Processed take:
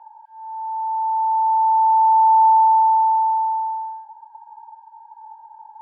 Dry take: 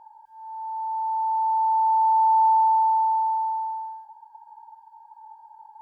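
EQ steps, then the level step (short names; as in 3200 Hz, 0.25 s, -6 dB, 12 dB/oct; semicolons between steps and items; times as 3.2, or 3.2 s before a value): steep high-pass 740 Hz; air absorption 330 m; +7.0 dB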